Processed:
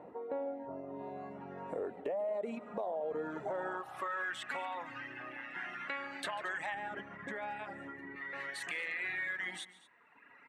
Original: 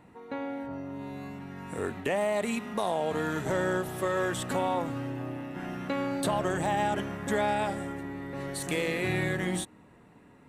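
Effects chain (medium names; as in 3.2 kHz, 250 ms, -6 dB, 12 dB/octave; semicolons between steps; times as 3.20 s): reverb removal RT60 1.3 s; band-pass sweep 570 Hz -> 1.9 kHz, 3.26–4.39 s; peak limiter -33 dBFS, peak gain reduction 9 dB; compression 2:1, threshold -56 dBFS, peak gain reduction 11 dB; 6.74–8.16 s: tilt shelf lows +9.5 dB, about 790 Hz; on a send: multi-tap echo 144/226 ms -19/-19.5 dB; on the sum: trim +13 dB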